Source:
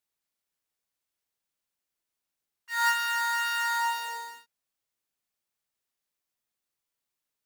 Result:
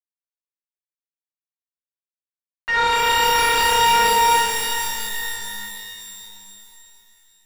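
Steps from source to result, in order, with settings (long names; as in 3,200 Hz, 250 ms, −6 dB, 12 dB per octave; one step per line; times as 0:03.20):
fuzz pedal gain 53 dB, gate −56 dBFS
low-pass filter 2,400 Hz 12 dB per octave
reverb with rising layers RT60 3.1 s, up +12 semitones, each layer −2 dB, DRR 1 dB
level −3 dB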